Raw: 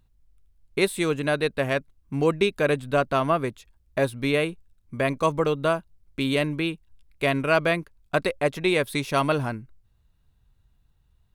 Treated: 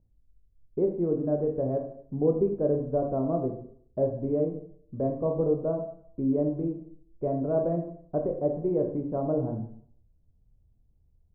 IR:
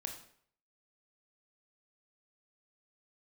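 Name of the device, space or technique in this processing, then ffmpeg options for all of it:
next room: -filter_complex "[0:a]lowpass=f=630:w=0.5412,lowpass=f=630:w=1.3066[s0];[1:a]atrim=start_sample=2205[s1];[s0][s1]afir=irnorm=-1:irlink=0"

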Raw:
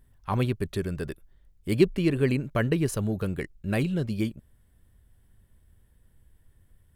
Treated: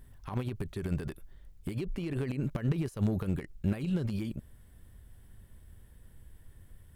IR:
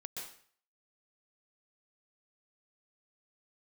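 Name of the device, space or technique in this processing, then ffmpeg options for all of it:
de-esser from a sidechain: -filter_complex "[0:a]asplit=2[s0][s1];[s1]highpass=f=5300:p=1,apad=whole_len=306644[s2];[s0][s2]sidechaincompress=threshold=0.00158:ratio=10:attack=0.54:release=39,volume=2"

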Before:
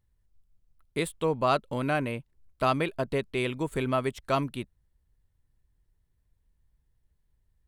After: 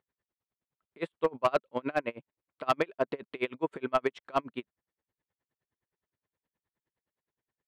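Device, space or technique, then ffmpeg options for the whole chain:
helicopter radio: -af "highpass=310,lowpass=2600,aeval=exprs='val(0)*pow(10,-33*(0.5-0.5*cos(2*PI*9.6*n/s))/20)':c=same,asoftclip=type=hard:threshold=0.0794,volume=1.88"

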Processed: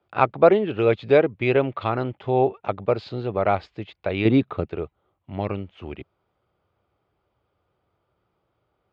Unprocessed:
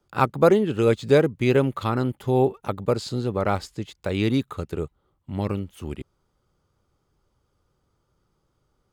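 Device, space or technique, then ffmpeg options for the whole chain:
guitar cabinet: -filter_complex "[0:a]asettb=1/sr,asplit=3[s0][s1][s2];[s0]atrim=end=4.254[s3];[s1]atrim=start=4.25:end=4.66,asetpts=PTS-STARTPTS,afade=t=in:d=0.004:c=qsin,afade=t=out:st=0.406:d=0.004:c=qsin,equalizer=f=220:w=0.38:g=8.5[s4];[s2]atrim=start=4.656[s5];[s3][s4]acrossfade=d=0.004:c1=hsin:c2=qsin[s6];[s6][s5]acrossfade=d=0.004:c1=qsin:c2=hsin,highpass=86,equalizer=f=150:t=q:w=4:g=-7,equalizer=f=240:t=q:w=4:g=-6,equalizer=f=680:t=q:w=4:g=8,equalizer=f=2400:t=q:w=4:g=5,lowpass=f=3600:w=0.5412,lowpass=f=3600:w=1.3066"

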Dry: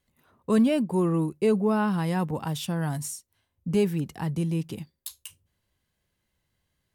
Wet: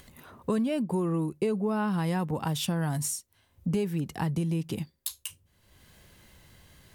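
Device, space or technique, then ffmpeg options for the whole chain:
upward and downward compression: -af "acompressor=mode=upward:threshold=0.00562:ratio=2.5,acompressor=threshold=0.0316:ratio=6,volume=1.68"

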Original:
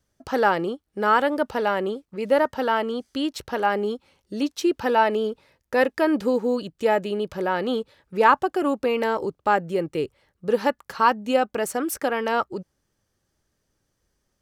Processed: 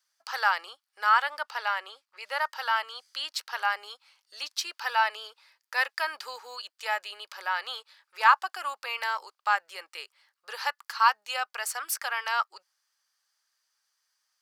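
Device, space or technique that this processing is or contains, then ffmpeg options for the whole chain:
headphones lying on a table: -filter_complex "[0:a]highpass=f=1000:w=0.5412,highpass=f=1000:w=1.3066,equalizer=f=4700:t=o:w=0.32:g=7.5,asettb=1/sr,asplit=3[s0][s1][s2];[s0]atrim=end=1.094[s3];[s1]atrim=start=1.09:end=2.41,asetpts=PTS-STARTPTS,afade=t=in:d=0.004:c=qsin,afade=t=out:st=1.316:d=0.004:c=qsin,highshelf=f=6000:g=-5.5[s4];[s2]atrim=start=2.406[s5];[s3][s4]acrossfade=d=0.004:c1=hsin:c2=qsin[s6];[s6][s5]acrossfade=d=0.004:c1=qsin:c2=hsin"

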